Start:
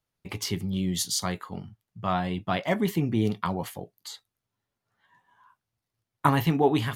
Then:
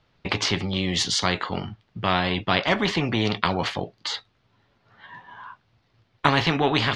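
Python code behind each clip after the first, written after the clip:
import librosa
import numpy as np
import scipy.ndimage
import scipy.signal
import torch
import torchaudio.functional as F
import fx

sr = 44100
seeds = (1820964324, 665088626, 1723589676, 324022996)

y = scipy.signal.sosfilt(scipy.signal.butter(4, 4400.0, 'lowpass', fs=sr, output='sos'), x)
y = fx.spectral_comp(y, sr, ratio=2.0)
y = y * 10.0 ** (4.5 / 20.0)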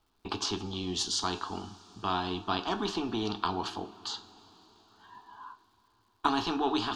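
y = fx.fixed_phaser(x, sr, hz=550.0, stages=6)
y = fx.rev_double_slope(y, sr, seeds[0], early_s=0.34, late_s=4.8, knee_db=-18, drr_db=10.5)
y = fx.dmg_crackle(y, sr, seeds[1], per_s=350.0, level_db=-59.0)
y = y * 10.0 ** (-5.0 / 20.0)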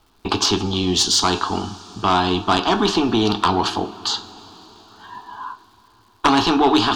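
y = fx.fold_sine(x, sr, drive_db=8, ceiling_db=-10.5)
y = y * 10.0 ** (3.0 / 20.0)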